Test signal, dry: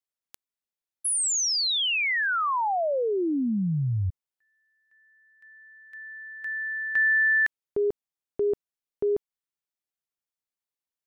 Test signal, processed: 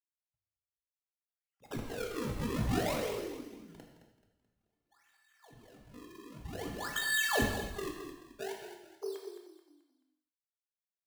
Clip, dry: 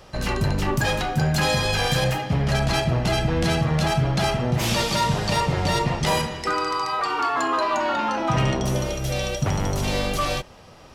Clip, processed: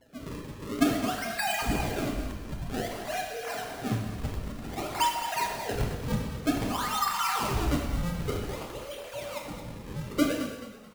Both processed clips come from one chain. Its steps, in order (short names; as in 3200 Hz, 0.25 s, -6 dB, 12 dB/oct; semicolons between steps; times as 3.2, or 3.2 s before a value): sine-wave speech; reverb removal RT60 0.63 s; HPF 640 Hz 12 dB/oct; harmonic tremolo 6.2 Hz, depth 50%, crossover 1500 Hz; decimation with a swept rate 35×, swing 160% 0.53 Hz; frequency-shifting echo 0.216 s, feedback 36%, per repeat -32 Hz, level -10.5 dB; non-linear reverb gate 0.33 s falling, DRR 0.5 dB; gain -8 dB